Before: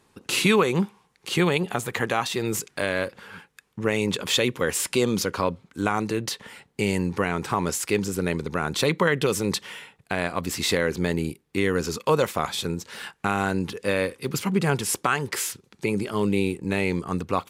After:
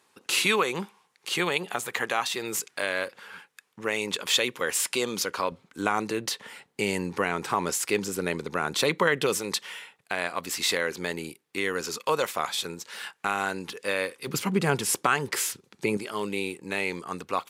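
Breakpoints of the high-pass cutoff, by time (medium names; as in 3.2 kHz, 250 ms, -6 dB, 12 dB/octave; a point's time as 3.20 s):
high-pass 6 dB/octave
750 Hz
from 5.52 s 360 Hz
from 9.37 s 770 Hz
from 14.27 s 190 Hz
from 15.97 s 760 Hz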